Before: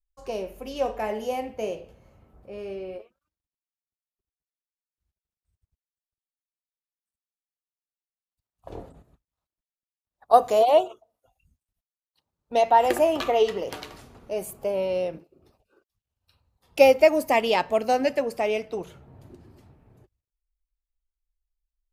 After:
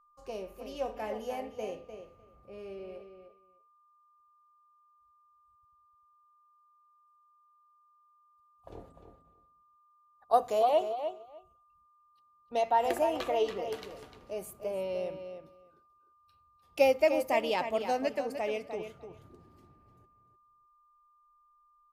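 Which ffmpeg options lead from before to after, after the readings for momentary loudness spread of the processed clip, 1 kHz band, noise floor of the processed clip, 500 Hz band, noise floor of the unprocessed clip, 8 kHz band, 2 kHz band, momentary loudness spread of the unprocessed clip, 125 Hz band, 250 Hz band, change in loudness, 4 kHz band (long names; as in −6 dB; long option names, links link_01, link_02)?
22 LU, −7.5 dB, −67 dBFS, −8.0 dB, below −85 dBFS, −8.5 dB, −8.0 dB, 20 LU, can't be measured, −8.0 dB, −8.5 dB, −8.0 dB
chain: -filter_complex "[0:a]asplit=2[link_01][link_02];[link_02]adelay=301,lowpass=frequency=4600:poles=1,volume=-8.5dB,asplit=2[link_03][link_04];[link_04]adelay=301,lowpass=frequency=4600:poles=1,volume=0.15[link_05];[link_01][link_03][link_05]amix=inputs=3:normalize=0,aeval=exprs='val(0)+0.00178*sin(2*PI*1200*n/s)':channel_layout=same,volume=-8.5dB"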